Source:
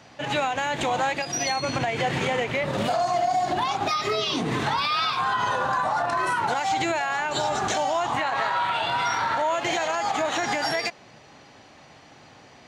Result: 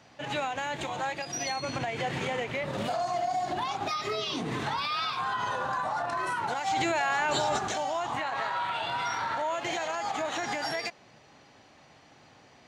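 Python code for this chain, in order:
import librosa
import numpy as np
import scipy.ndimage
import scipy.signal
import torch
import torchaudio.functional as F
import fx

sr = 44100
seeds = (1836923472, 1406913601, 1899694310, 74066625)

y = fx.notch_comb(x, sr, f0_hz=250.0, at=(0.77, 1.21))
y = fx.env_flatten(y, sr, amount_pct=100, at=(6.66, 7.57), fade=0.02)
y = y * 10.0 ** (-6.5 / 20.0)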